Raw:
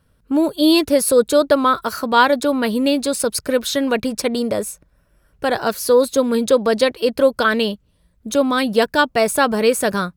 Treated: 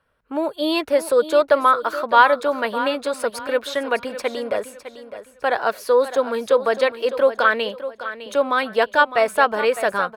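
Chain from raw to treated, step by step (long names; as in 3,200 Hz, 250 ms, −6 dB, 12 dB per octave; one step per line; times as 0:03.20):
three-way crossover with the lows and the highs turned down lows −17 dB, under 480 Hz, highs −15 dB, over 2,900 Hz
repeating echo 607 ms, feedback 29%, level −12.5 dB
level +1.5 dB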